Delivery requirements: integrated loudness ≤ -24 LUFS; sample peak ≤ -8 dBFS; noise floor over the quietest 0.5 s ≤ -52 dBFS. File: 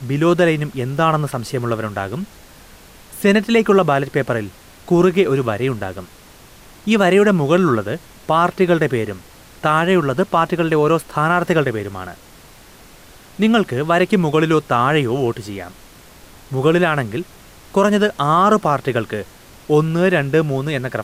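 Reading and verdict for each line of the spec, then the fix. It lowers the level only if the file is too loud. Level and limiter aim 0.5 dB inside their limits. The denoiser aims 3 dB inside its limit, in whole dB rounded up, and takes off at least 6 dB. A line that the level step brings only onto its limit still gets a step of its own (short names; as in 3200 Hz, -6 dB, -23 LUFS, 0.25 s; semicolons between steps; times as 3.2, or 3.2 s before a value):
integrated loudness -17.0 LUFS: fail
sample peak -3.5 dBFS: fail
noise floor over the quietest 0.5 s -43 dBFS: fail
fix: denoiser 6 dB, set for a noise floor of -43 dBFS; gain -7.5 dB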